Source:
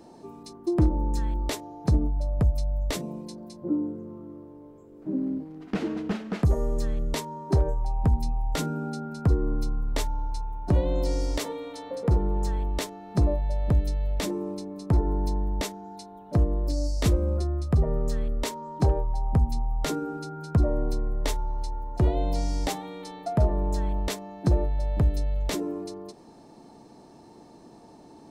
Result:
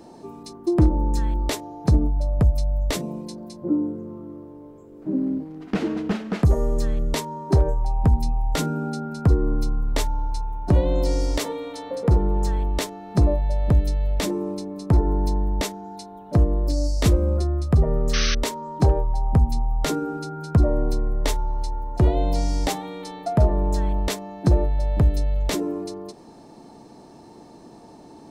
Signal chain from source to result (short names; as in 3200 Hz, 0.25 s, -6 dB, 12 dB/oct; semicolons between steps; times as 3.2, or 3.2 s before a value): painted sound noise, 18.13–18.35, 1100–6300 Hz -30 dBFS; gain +4.5 dB